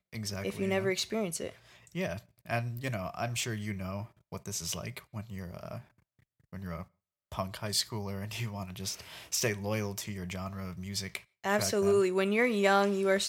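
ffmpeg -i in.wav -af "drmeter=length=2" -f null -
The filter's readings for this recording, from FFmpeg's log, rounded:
Channel 1: DR: 9.5
Overall DR: 9.5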